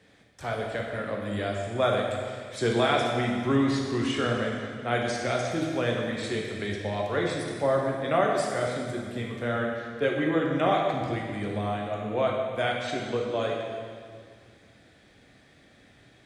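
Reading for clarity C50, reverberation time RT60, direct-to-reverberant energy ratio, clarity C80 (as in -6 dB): 1.5 dB, 2.0 s, -1.0 dB, 3.0 dB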